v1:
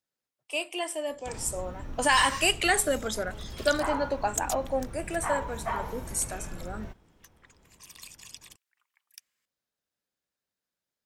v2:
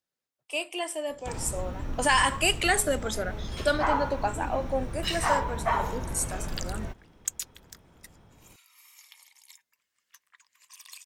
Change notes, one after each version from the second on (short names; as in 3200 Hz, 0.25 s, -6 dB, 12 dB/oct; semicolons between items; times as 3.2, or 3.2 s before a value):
first sound +5.5 dB; second sound: entry +2.90 s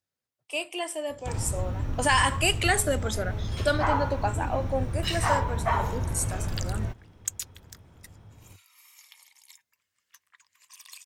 master: add bell 96 Hz +13 dB 0.72 oct